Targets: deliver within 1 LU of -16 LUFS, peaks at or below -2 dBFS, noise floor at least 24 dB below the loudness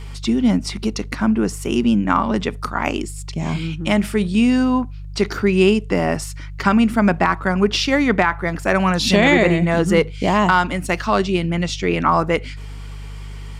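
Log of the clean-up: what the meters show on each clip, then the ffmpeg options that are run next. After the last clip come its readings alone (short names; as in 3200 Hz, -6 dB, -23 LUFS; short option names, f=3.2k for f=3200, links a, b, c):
hum 50 Hz; harmonics up to 150 Hz; hum level -29 dBFS; loudness -18.5 LUFS; peak -2.5 dBFS; loudness target -16.0 LUFS
-> -af "bandreject=f=50:t=h:w=4,bandreject=f=100:t=h:w=4,bandreject=f=150:t=h:w=4"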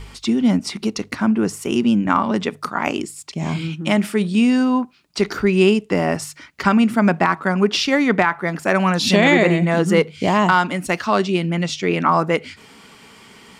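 hum none; loudness -18.5 LUFS; peak -2.5 dBFS; loudness target -16.0 LUFS
-> -af "volume=2.5dB,alimiter=limit=-2dB:level=0:latency=1"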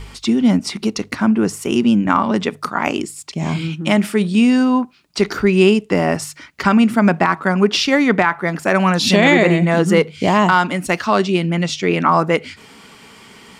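loudness -16.0 LUFS; peak -2.0 dBFS; noise floor -44 dBFS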